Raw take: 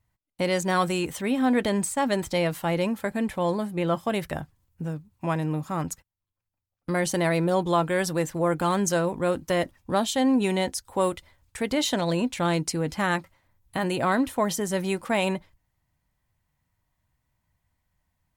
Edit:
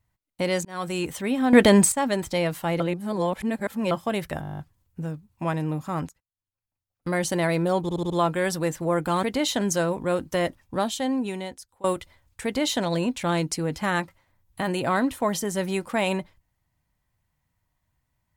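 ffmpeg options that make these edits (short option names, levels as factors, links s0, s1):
-filter_complex "[0:a]asplit=23[s0][s1][s2][s3][s4][s5][s6][s7][s8][s9][s10][s11][s12][s13][s14][s15][s16][s17][s18][s19][s20][s21][s22];[s0]atrim=end=0.65,asetpts=PTS-STARTPTS,afade=t=out:st=0.646:d=0.004:c=hsin[s23];[s1]atrim=start=0.65:end=1.532,asetpts=PTS-STARTPTS,afade=t=in:d=0.37[s24];[s2]atrim=start=1.528:end=1.922,asetpts=PTS-STARTPTS,volume=2.99[s25];[s3]atrim=start=1.918:end=2.802[s26];[s4]atrim=start=2.798:end=3.912,asetpts=PTS-STARTPTS,areverse[s27];[s5]atrim=start=3.908:end=4.432[s28];[s6]atrim=start=4.408:end=4.432[s29];[s7]atrim=start=4.408:end=4.432[s30];[s8]atrim=start=4.408:end=4.432[s31];[s9]atrim=start=4.408:end=4.432[s32];[s10]atrim=start=4.408:end=4.432[s33];[s11]atrim=start=4.408:end=4.432[s34];[s12]atrim=start=4.408:end=4.432[s35];[s13]atrim=start=4.408:end=4.432[s36];[s14]atrim=start=4.408:end=5.91,asetpts=PTS-STARTPTS,afade=t=out:st=1.498:d=0.004:c=hsin:silence=0.105925[s37];[s15]atrim=start=5.91:end=7.712,asetpts=PTS-STARTPTS,afade=t=in:d=1.03:silence=0.105925[s38];[s16]atrim=start=7.638:end=7.712[s39];[s17]atrim=start=7.638:end=7.712[s40];[s18]atrim=start=7.638:end=7.712[s41];[s19]atrim=start=7.638:end=8.772[s42];[s20]atrim=start=11.598:end=11.982[s43];[s21]atrim=start=8.768:end=11,asetpts=PTS-STARTPTS,afade=t=out:st=1.012:d=1.22:silence=0.0707946[s44];[s22]atrim=start=11,asetpts=PTS-STARTPTS,afade=t=in:d=0.004:c=hsin:silence=0.0707946[s45];[s23][s24]concat=n=2:v=0:a=1[s46];[s46][s25]acrossfade=d=0.004:c1=hsin:c2=hsin[s47];[s47][s26]acrossfade=d=0.004:c1=hsin:c2=hsin[s48];[s48][s27]acrossfade=d=0.004:c1=hsin:c2=hsin[s49];[s49][s28]acrossfade=d=0.004:c1=hsin:c2=hsin[s50];[s50][s29]acrossfade=d=0.004:c1=hsin:c2=hsin[s51];[s51][s30]acrossfade=d=0.004:c1=hsin:c2=hsin[s52];[s52][s31]acrossfade=d=0.004:c1=hsin:c2=hsin[s53];[s53][s32]acrossfade=d=0.004:c1=hsin:c2=hsin[s54];[s54][s33]acrossfade=d=0.004:c1=hsin:c2=hsin[s55];[s55][s34]acrossfade=d=0.004:c1=hsin:c2=hsin[s56];[s56][s35]acrossfade=d=0.004:c1=hsin:c2=hsin[s57];[s57][s36]acrossfade=d=0.004:c1=hsin:c2=hsin[s58];[s37][s38]concat=n=2:v=0:a=1[s59];[s58][s59]acrossfade=d=0.004:c1=hsin:c2=hsin[s60];[s60][s39]acrossfade=d=0.004:c1=hsin:c2=hsin[s61];[s61][s40]acrossfade=d=0.004:c1=hsin:c2=hsin[s62];[s62][s41]acrossfade=d=0.004:c1=hsin:c2=hsin[s63];[s63][s42]acrossfade=d=0.004:c1=hsin:c2=hsin[s64];[s64][s43]acrossfade=d=0.004:c1=hsin:c2=hsin[s65];[s44][s45]concat=n=2:v=0:a=1[s66];[s65][s66]acrossfade=d=0.004:c1=hsin:c2=hsin"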